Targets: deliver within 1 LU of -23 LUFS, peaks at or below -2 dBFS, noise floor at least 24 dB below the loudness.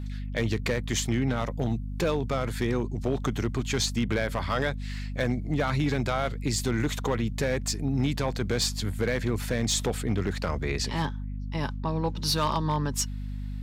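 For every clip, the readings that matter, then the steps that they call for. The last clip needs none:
clipped 0.7%; flat tops at -18.5 dBFS; hum 50 Hz; harmonics up to 250 Hz; hum level -31 dBFS; loudness -28.5 LUFS; peak -18.5 dBFS; loudness target -23.0 LUFS
-> clip repair -18.5 dBFS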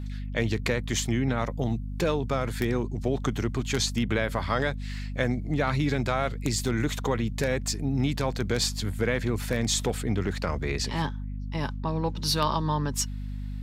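clipped 0.0%; hum 50 Hz; harmonics up to 250 Hz; hum level -31 dBFS
-> de-hum 50 Hz, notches 5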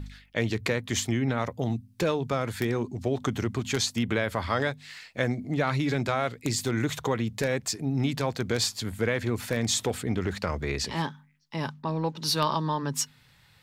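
hum none; loudness -29.0 LUFS; peak -10.0 dBFS; loudness target -23.0 LUFS
-> gain +6 dB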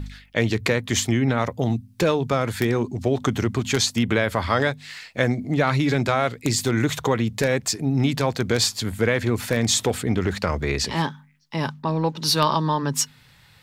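loudness -23.0 LUFS; peak -4.0 dBFS; noise floor -53 dBFS

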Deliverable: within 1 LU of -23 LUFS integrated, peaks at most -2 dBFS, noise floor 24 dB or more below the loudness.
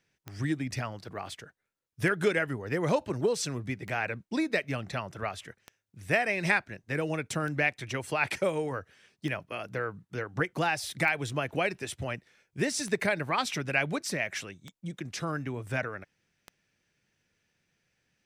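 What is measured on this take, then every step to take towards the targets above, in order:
clicks 10; loudness -31.0 LUFS; peak -10.5 dBFS; loudness target -23.0 LUFS
-> de-click; gain +8 dB

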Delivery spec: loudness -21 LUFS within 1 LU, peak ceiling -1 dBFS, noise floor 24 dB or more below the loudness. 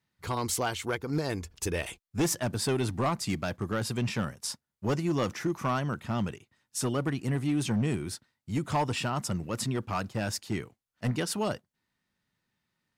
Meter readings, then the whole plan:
clipped 1.5%; flat tops at -22.0 dBFS; loudness -31.5 LUFS; peak -22.0 dBFS; loudness target -21.0 LUFS
-> clip repair -22 dBFS; gain +10.5 dB

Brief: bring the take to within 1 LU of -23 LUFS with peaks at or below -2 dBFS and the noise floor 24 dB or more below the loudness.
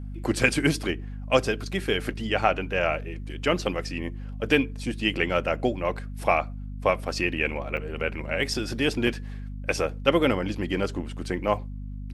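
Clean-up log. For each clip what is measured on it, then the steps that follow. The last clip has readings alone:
dropouts 3; longest dropout 3.8 ms; hum 50 Hz; harmonics up to 250 Hz; hum level -33 dBFS; loudness -26.5 LUFS; peak -5.0 dBFS; loudness target -23.0 LUFS
-> interpolate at 7.77/8.54/9.07, 3.8 ms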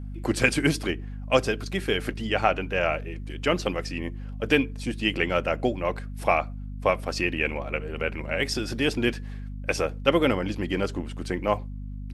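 dropouts 0; hum 50 Hz; harmonics up to 250 Hz; hum level -33 dBFS
-> de-hum 50 Hz, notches 5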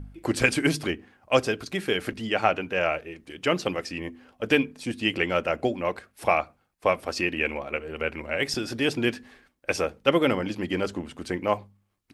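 hum none; loudness -27.0 LUFS; peak -4.5 dBFS; loudness target -23.0 LUFS
-> gain +4 dB; limiter -2 dBFS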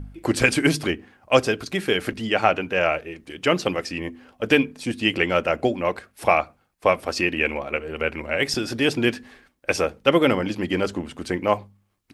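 loudness -23.0 LUFS; peak -2.0 dBFS; noise floor -66 dBFS

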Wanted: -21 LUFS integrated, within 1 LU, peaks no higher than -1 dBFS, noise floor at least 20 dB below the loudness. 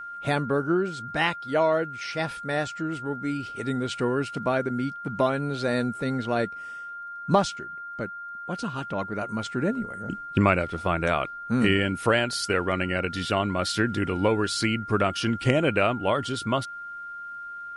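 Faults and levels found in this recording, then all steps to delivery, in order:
ticks 16/s; steady tone 1400 Hz; tone level -35 dBFS; loudness -26.5 LUFS; peak -5.5 dBFS; loudness target -21.0 LUFS
-> de-click; notch 1400 Hz, Q 30; gain +5.5 dB; limiter -1 dBFS

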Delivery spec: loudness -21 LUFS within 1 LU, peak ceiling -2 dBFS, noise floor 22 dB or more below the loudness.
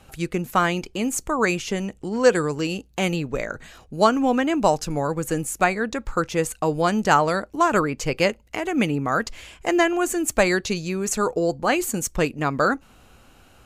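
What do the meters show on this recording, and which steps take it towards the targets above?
loudness -23.0 LUFS; peak -3.0 dBFS; loudness target -21.0 LUFS
-> gain +2 dB; limiter -2 dBFS

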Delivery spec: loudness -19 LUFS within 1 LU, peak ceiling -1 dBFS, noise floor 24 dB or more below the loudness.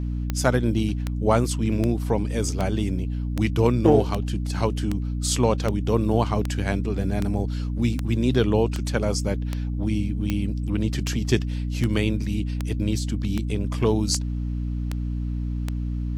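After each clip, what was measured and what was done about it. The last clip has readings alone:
clicks 21; hum 60 Hz; harmonics up to 300 Hz; hum level -24 dBFS; loudness -24.5 LUFS; peak -4.5 dBFS; loudness target -19.0 LUFS
-> de-click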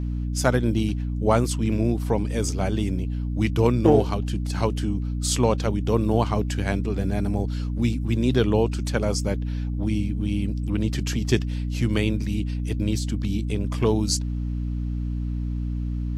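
clicks 0; hum 60 Hz; harmonics up to 300 Hz; hum level -24 dBFS
-> notches 60/120/180/240/300 Hz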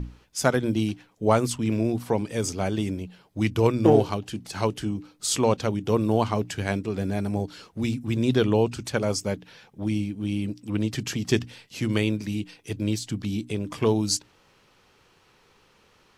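hum none; loudness -26.0 LUFS; peak -5.0 dBFS; loudness target -19.0 LUFS
-> gain +7 dB; limiter -1 dBFS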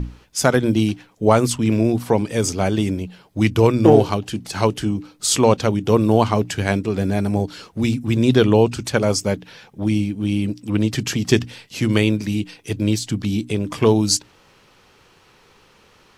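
loudness -19.5 LUFS; peak -1.0 dBFS; noise floor -54 dBFS

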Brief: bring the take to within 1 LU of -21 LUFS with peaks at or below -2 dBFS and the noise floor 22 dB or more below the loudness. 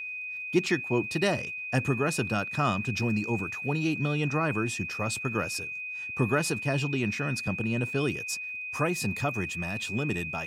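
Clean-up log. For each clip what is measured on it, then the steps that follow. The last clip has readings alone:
ticks 40/s; steady tone 2500 Hz; tone level -34 dBFS; loudness -29.0 LUFS; peak -11.0 dBFS; loudness target -21.0 LUFS
-> de-click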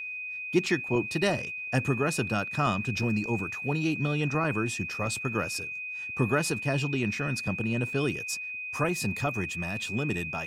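ticks 0.096/s; steady tone 2500 Hz; tone level -34 dBFS
-> notch 2500 Hz, Q 30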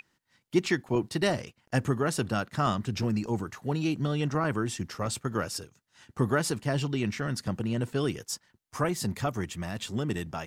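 steady tone none; loudness -30.5 LUFS; peak -12.0 dBFS; loudness target -21.0 LUFS
-> gain +9.5 dB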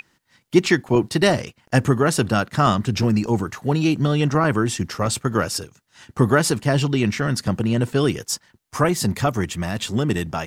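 loudness -21.0 LUFS; peak -2.5 dBFS; noise floor -67 dBFS

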